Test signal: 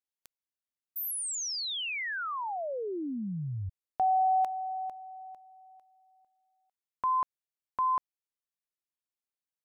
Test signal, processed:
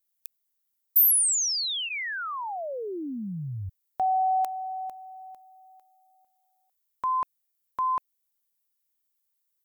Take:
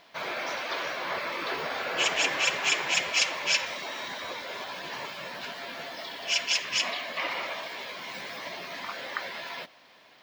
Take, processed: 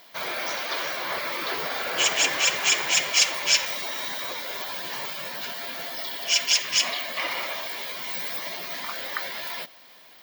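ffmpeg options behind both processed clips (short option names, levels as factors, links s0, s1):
-af "aemphasis=mode=production:type=50fm,bandreject=f=2600:w=22,volume=1.19"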